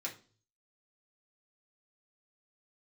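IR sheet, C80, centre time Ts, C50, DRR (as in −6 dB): 18.0 dB, 16 ms, 12.0 dB, −3.5 dB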